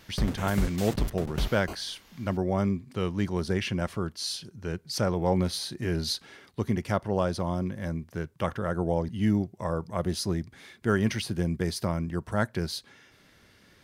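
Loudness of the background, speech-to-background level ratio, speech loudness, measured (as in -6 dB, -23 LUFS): -34.5 LUFS, 4.5 dB, -30.0 LUFS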